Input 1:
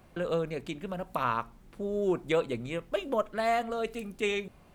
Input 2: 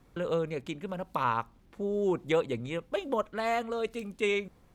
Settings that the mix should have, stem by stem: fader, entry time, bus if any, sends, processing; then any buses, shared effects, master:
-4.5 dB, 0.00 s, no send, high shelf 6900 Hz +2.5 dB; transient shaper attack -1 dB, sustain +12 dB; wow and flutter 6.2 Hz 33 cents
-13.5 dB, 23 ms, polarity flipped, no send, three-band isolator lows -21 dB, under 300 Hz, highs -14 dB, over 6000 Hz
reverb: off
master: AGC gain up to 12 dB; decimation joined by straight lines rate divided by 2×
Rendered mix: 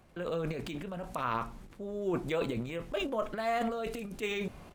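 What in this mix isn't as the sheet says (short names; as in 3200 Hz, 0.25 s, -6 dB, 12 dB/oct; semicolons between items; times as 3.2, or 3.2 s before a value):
stem 1: missing wow and flutter 6.2 Hz 33 cents; master: missing AGC gain up to 12 dB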